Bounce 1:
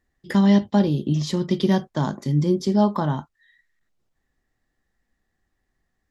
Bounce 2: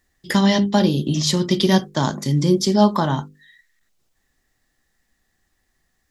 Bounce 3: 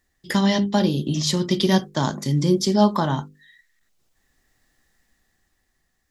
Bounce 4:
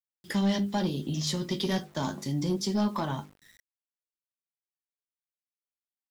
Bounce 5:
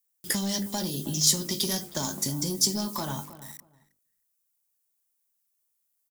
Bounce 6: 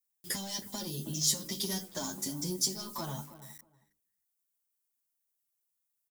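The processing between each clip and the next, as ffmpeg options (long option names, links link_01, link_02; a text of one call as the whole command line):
ffmpeg -i in.wav -af "highshelf=frequency=2700:gain=10.5,bandreject=frequency=50:width_type=h:width=6,bandreject=frequency=100:width_type=h:width=6,bandreject=frequency=150:width_type=h:width=6,bandreject=frequency=200:width_type=h:width=6,bandreject=frequency=250:width_type=h:width=6,bandreject=frequency=300:width_type=h:width=6,bandreject=frequency=350:width_type=h:width=6,bandreject=frequency=400:width_type=h:width=6,bandreject=frequency=450:width_type=h:width=6,bandreject=frequency=500:width_type=h:width=6,volume=4dB" out.wav
ffmpeg -i in.wav -af "dynaudnorm=framelen=220:gausssize=13:maxgain=14dB,volume=-3dB" out.wav
ffmpeg -i in.wav -af "flanger=delay=8.7:depth=4.3:regen=51:speed=0.34:shape=triangular,acrusher=bits=8:mix=0:aa=0.000001,asoftclip=type=tanh:threshold=-17dB,volume=-3dB" out.wav
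ffmpeg -i in.wav -filter_complex "[0:a]acrossover=split=5000[link_01][link_02];[link_01]acompressor=threshold=-35dB:ratio=6[link_03];[link_02]crystalizer=i=3.5:c=0[link_04];[link_03][link_04]amix=inputs=2:normalize=0,asplit=2[link_05][link_06];[link_06]adelay=317,lowpass=frequency=1400:poles=1,volume=-14dB,asplit=2[link_07][link_08];[link_08]adelay=317,lowpass=frequency=1400:poles=1,volume=0.19[link_09];[link_05][link_07][link_09]amix=inputs=3:normalize=0,volume=5.5dB" out.wav
ffmpeg -i in.wav -filter_complex "[0:a]asplit=2[link_01][link_02];[link_02]adelay=8.2,afreqshift=-0.43[link_03];[link_01][link_03]amix=inputs=2:normalize=1,volume=-3.5dB" out.wav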